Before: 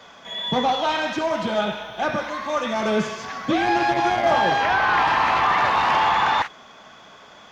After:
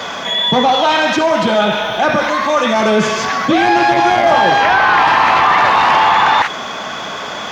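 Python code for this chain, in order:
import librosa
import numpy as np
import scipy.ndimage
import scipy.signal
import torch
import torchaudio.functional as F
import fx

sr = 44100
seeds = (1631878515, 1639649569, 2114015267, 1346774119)

y = fx.low_shelf(x, sr, hz=69.0, db=-11.0)
y = fx.env_flatten(y, sr, amount_pct=50)
y = y * librosa.db_to_amplitude(7.0)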